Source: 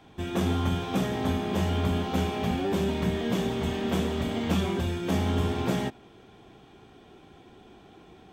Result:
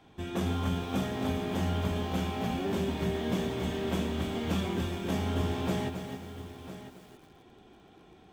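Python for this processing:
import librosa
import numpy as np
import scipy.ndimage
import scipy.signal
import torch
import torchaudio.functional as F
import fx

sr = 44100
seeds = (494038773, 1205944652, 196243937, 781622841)

y = x + 10.0 ** (-13.0 / 20.0) * np.pad(x, (int(1004 * sr / 1000.0), 0))[:len(x)]
y = fx.echo_crushed(y, sr, ms=268, feedback_pct=35, bits=8, wet_db=-7.5)
y = F.gain(torch.from_numpy(y), -4.5).numpy()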